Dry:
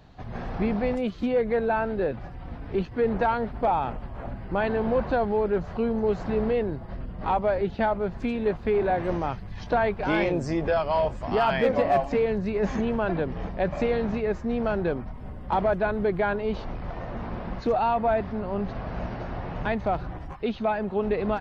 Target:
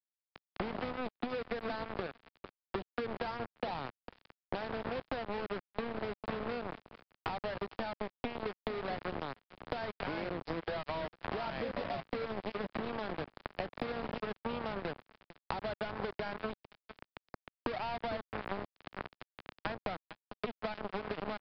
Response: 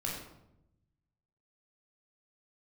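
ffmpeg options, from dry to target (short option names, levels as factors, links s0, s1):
-filter_complex "[0:a]highpass=100,acrusher=bits=3:mix=0:aa=0.5,acompressor=threshold=0.0398:ratio=12,lowshelf=f=140:g=5.5,asplit=2[s0][s1];[s1]adelay=452,lowpass=f=3400:p=1,volume=0.282,asplit=2[s2][s3];[s3]adelay=452,lowpass=f=3400:p=1,volume=0.42,asplit=2[s4][s5];[s5]adelay=452,lowpass=f=3400:p=1,volume=0.42,asplit=2[s6][s7];[s7]adelay=452,lowpass=f=3400:p=1,volume=0.42[s8];[s0][s2][s4][s6][s8]amix=inputs=5:normalize=0,adynamicequalizer=threshold=0.00708:dfrequency=420:dqfactor=7.4:tfrequency=420:tqfactor=7.4:attack=5:release=100:ratio=0.375:range=1.5:mode=cutabove:tftype=bell,aeval=exprs='sgn(val(0))*max(abs(val(0))-0.0188,0)':c=same,acrossover=split=230|1800[s9][s10][s11];[s9]acompressor=threshold=0.00224:ratio=4[s12];[s10]acompressor=threshold=0.00562:ratio=4[s13];[s11]acompressor=threshold=0.00141:ratio=4[s14];[s12][s13][s14]amix=inputs=3:normalize=0,aresample=11025,aresample=44100,volume=2.37"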